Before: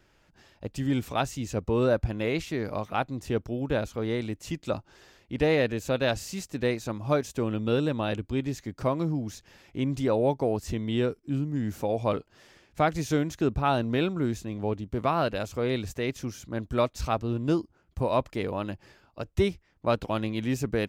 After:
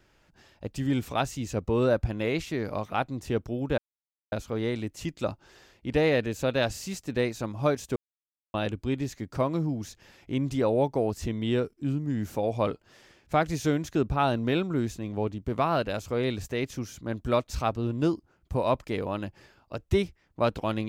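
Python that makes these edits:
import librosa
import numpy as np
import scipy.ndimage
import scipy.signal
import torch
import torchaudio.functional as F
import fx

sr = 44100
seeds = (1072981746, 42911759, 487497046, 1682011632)

y = fx.edit(x, sr, fx.insert_silence(at_s=3.78, length_s=0.54),
    fx.silence(start_s=7.42, length_s=0.58), tone=tone)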